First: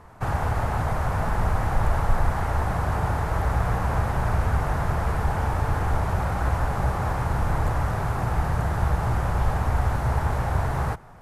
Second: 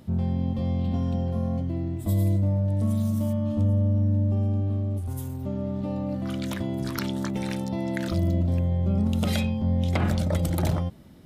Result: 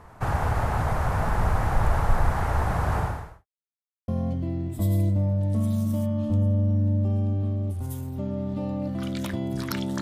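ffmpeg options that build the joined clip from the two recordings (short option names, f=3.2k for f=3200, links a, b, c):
-filter_complex "[0:a]apad=whole_dur=10.01,atrim=end=10.01,asplit=2[a][b];[a]atrim=end=3.46,asetpts=PTS-STARTPTS,afade=t=out:st=2.99:d=0.47:c=qua[c];[b]atrim=start=3.46:end=4.08,asetpts=PTS-STARTPTS,volume=0[d];[1:a]atrim=start=1.35:end=7.28,asetpts=PTS-STARTPTS,afade=t=in:d=0.004:c=hsin[e];[c][d][e]concat=n=3:v=0:a=1"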